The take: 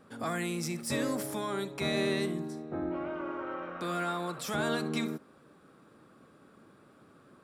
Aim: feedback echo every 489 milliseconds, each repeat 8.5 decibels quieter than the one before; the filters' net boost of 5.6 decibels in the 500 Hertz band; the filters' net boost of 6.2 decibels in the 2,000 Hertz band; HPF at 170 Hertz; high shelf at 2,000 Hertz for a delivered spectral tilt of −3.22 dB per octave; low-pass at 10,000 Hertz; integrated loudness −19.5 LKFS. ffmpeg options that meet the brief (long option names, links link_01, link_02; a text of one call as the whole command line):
ffmpeg -i in.wav -af "highpass=170,lowpass=10000,equalizer=frequency=500:width_type=o:gain=7,highshelf=frequency=2000:gain=7.5,equalizer=frequency=2000:width_type=o:gain=3,aecho=1:1:489|978|1467|1956:0.376|0.143|0.0543|0.0206,volume=9.5dB" out.wav